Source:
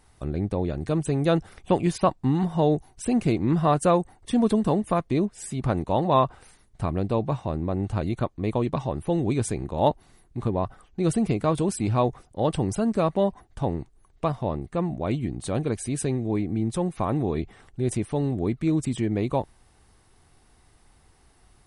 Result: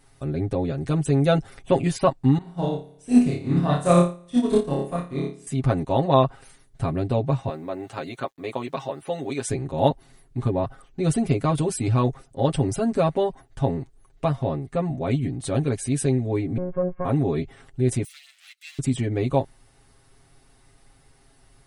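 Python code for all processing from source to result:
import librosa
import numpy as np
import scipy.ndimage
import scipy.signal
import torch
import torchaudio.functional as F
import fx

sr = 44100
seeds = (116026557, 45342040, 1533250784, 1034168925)

y = fx.chain(x, sr, fx.room_flutter(wall_m=4.9, rt60_s=0.82),
    fx.upward_expand(threshold_db=-25.0, expansion=2.5), at=(2.38, 5.47))
y = fx.chain(y, sr, fx.weighting(curve='A'),
    fx.quant_dither(seeds[0], bits=12, dither='none'), at=(7.49, 9.5))
y = fx.chain(y, sr, fx.lower_of_two(delay_ms=1.8),
    fx.gaussian_blur(sigma=5.8),
    fx.robotise(hz=181.0), at=(16.57, 17.05))
y = fx.chain(y, sr, fx.lower_of_two(delay_ms=1.5),
    fx.cheby2_highpass(hz=410.0, order=4, stop_db=80),
    fx.high_shelf(hz=7000.0, db=4.0), at=(18.04, 18.79))
y = fx.peak_eq(y, sr, hz=1000.0, db=-4.5, octaves=0.34)
y = y + 0.87 * np.pad(y, (int(7.4 * sr / 1000.0), 0))[:len(y)]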